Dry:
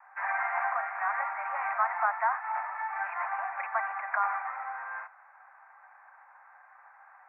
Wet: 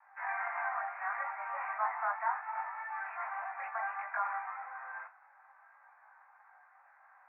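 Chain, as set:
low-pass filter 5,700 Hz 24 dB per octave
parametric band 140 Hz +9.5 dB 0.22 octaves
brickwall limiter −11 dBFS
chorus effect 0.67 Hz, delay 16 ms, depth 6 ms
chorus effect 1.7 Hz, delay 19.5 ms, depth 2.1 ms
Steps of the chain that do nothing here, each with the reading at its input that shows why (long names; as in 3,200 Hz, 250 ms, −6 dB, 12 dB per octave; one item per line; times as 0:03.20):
low-pass filter 5,700 Hz: nothing at its input above 2,600 Hz
parametric band 140 Hz: nothing at its input below 540 Hz
brickwall limiter −11 dBFS: peak of its input −13.0 dBFS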